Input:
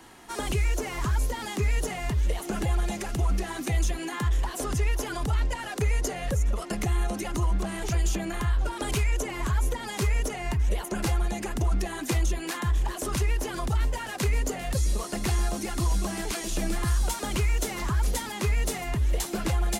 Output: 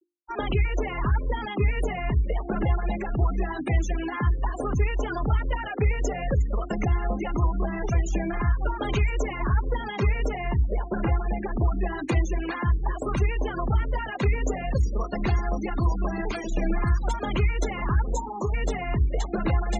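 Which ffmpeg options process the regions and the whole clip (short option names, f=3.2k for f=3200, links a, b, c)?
-filter_complex "[0:a]asettb=1/sr,asplit=3[a][b][c];[a]atrim=end=10.484[d];[b]atrim=start=10.48:end=11.83,asetpts=PTS-STARTPTS,afade=t=in:d=0.004:c=qsin,afade=t=out:st=1.346:d=0.004:c=qsin,aemphasis=mode=reproduction:type=50kf,aeval=exprs='sgn(val(0))*max(abs(val(0))-0.00168,0)':c=same[e];[c]atrim=start=11.826[f];[d][e]acrossfade=d=0.004:c1=hsin:c2=qsin[g];[g][f]acrossfade=d=0.004:c1=qsin:c2=hsin,asettb=1/sr,asplit=3[h][i][j];[h]atrim=end=18.124[k];[i]atrim=start=18.12:end=18.54,asetpts=PTS-STARTPTS,afade=t=in:d=0.004:c=qsin,afade=t=out:st=0.416:d=0.004:c=qsin,asuperstop=centerf=2100:order=20:qfactor=0.88,equalizer=f=7.1k:w=1.8:g=12.5,asplit=2[l][m];[m]highpass=f=720:p=1,volume=8dB,asoftclip=type=tanh:threshold=-11dB[n];[l][n]amix=inputs=2:normalize=0,lowpass=f=1.9k:p=1,volume=-6dB[o];[j]atrim=start=18.536[p];[k][o]acrossfade=d=0.004:c1=hsin:c2=qsin[q];[q][p]acrossfade=d=0.004:c1=qsin:c2=hsin,lowpass=f=3.4k:p=1,afftfilt=real='re*gte(hypot(re,im),0.0224)':imag='im*gte(hypot(re,im),0.0224)':win_size=1024:overlap=0.75,bandreject=f=50:t=h:w=6,bandreject=f=100:t=h:w=6,bandreject=f=150:t=h:w=6,bandreject=f=200:t=h:w=6,bandreject=f=250:t=h:w=6,bandreject=f=300:t=h:w=6,bandreject=f=350:t=h:w=6,volume=4dB"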